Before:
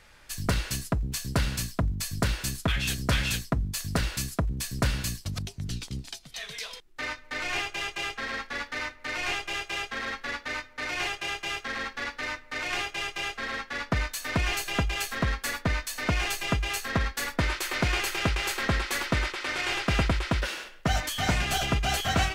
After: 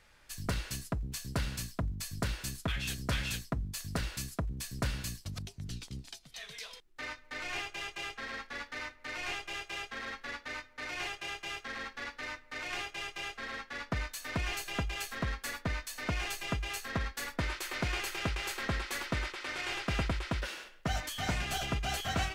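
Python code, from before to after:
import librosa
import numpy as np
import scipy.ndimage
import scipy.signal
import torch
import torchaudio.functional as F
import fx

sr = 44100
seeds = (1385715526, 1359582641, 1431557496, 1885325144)

y = F.gain(torch.from_numpy(x), -7.5).numpy()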